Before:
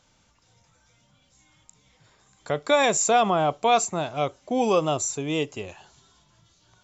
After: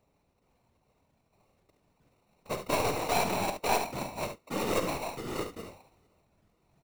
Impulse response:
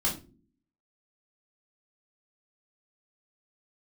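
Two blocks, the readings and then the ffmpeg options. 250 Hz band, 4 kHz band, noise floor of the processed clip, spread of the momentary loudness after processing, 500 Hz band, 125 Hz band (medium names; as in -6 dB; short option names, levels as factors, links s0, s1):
-8.0 dB, -7.0 dB, -73 dBFS, 10 LU, -9.5 dB, -6.5 dB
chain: -filter_complex "[0:a]acrusher=samples=27:mix=1:aa=0.000001,afftfilt=real='hypot(re,im)*cos(2*PI*random(0))':imag='hypot(re,im)*sin(2*PI*random(1))':win_size=512:overlap=0.75,aeval=exprs='0.282*(cos(1*acos(clip(val(0)/0.282,-1,1)))-cos(1*PI/2))+0.0398*(cos(4*acos(clip(val(0)/0.282,-1,1)))-cos(4*PI/2))':c=same,asplit=2[s0][s1];[s1]aecho=0:1:50|71:0.266|0.335[s2];[s0][s2]amix=inputs=2:normalize=0,volume=0.668"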